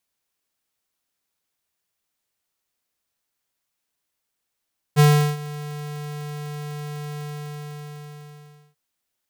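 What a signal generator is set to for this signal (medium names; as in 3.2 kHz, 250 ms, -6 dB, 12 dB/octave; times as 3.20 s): ADSR square 148 Hz, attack 36 ms, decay 369 ms, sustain -20 dB, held 2.24 s, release 1550 ms -12 dBFS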